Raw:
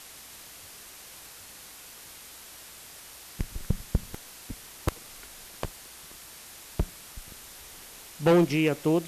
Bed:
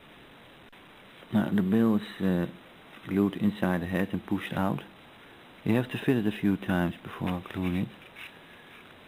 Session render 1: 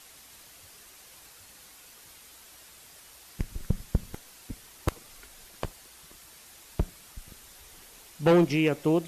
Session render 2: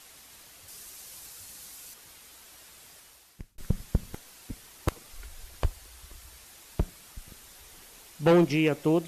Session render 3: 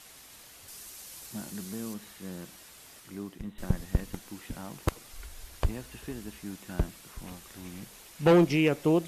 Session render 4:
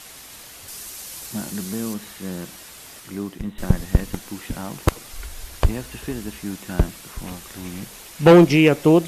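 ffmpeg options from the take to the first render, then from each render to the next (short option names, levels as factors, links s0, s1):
-af "afftdn=nr=6:nf=-47"
-filter_complex "[0:a]asettb=1/sr,asplit=3[s0][s1][s2];[s0]atrim=end=0.684[s3];[s1]atrim=start=0.68:end=1.94,asetpts=PTS-STARTPTS,afade=t=in:d=0.004:c=qsin,afade=t=out:st=1.256:d=0.004:c=qsin,bass=f=250:g=3,treble=f=4000:g=7[s4];[s2]atrim=start=1.936[s5];[s3][s4]acrossfade=d=0.004:c1=hsin:c2=qsin[s6];[s6][s5]acrossfade=d=0.004:c1=qsin:c2=hsin,asettb=1/sr,asplit=3[s7][s8][s9];[s7]atrim=end=5.134[s10];[s8]atrim=start=5.13:end=6.44,asetpts=PTS-STARTPTS,afade=t=in:d=0.004:c=qsin,afade=t=out:st=1.306:d=0.004:c=qsin,lowshelf=f=110:t=q:w=1.5:g=12[s11];[s9]atrim=start=6.436[s12];[s10][s11]acrossfade=d=0.004:c1=hsin:c2=qsin[s13];[s13][s12]acrossfade=d=0.004:c1=qsin:c2=hsin,asplit=2[s14][s15];[s14]atrim=end=3.58,asetpts=PTS-STARTPTS,afade=t=out:st=2.91:d=0.67[s16];[s15]atrim=start=3.58,asetpts=PTS-STARTPTS,afade=t=in:d=0.004:c=hsin[s17];[s16][s17]concat=n=2:v=0:a=1"
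-filter_complex "[1:a]volume=0.188[s0];[0:a][s0]amix=inputs=2:normalize=0"
-af "volume=3.16"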